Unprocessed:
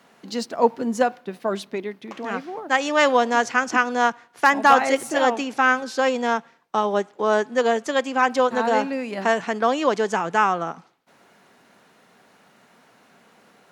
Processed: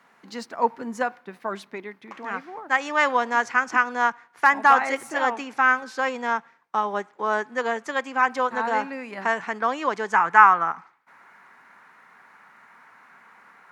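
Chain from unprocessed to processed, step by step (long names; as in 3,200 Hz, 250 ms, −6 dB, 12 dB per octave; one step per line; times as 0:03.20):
flat-topped bell 1,400 Hz +8 dB, from 0:10.13 +15.5 dB
level −8 dB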